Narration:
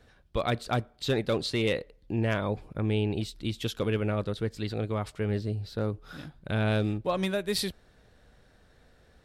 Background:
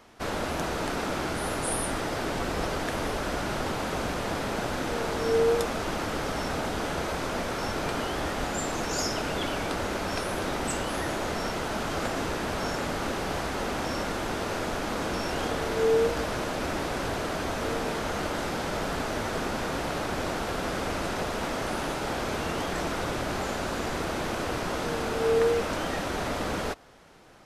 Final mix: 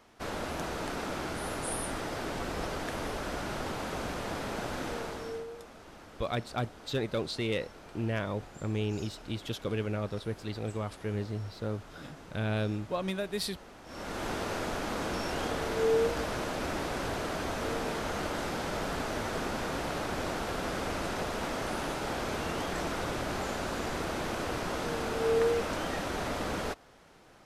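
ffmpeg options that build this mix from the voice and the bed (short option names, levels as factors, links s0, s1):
-filter_complex "[0:a]adelay=5850,volume=0.596[s0];[1:a]volume=3.76,afade=t=out:st=4.87:d=0.6:silence=0.177828,afade=t=in:st=13.85:d=0.42:silence=0.141254[s1];[s0][s1]amix=inputs=2:normalize=0"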